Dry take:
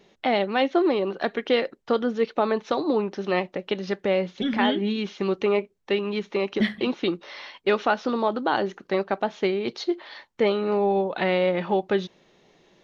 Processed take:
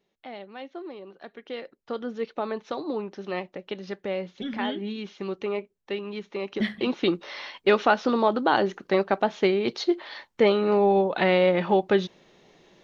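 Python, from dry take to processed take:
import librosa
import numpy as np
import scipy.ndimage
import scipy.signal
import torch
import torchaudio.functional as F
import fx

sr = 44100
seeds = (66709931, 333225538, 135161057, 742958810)

y = fx.gain(x, sr, db=fx.line((1.24, -17.5), (2.13, -7.0), (6.35, -7.0), (7.11, 2.0)))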